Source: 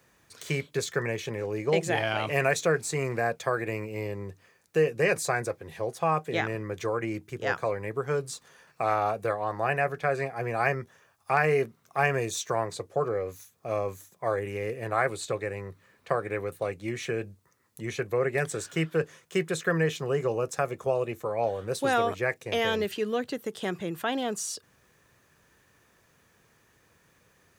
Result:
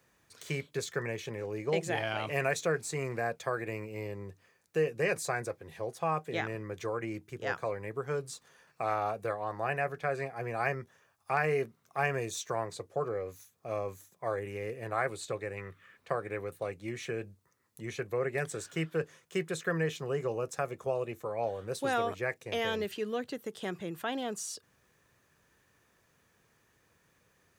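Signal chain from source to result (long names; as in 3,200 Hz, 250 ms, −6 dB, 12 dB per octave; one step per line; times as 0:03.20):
gain on a spectral selection 0:15.58–0:15.97, 1,100–3,700 Hz +10 dB
level −5.5 dB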